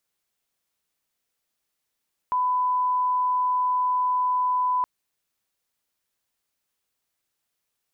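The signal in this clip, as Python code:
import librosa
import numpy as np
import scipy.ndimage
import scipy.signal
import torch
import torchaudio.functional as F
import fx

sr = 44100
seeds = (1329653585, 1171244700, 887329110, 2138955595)

y = fx.lineup_tone(sr, length_s=2.52, level_db=-20.0)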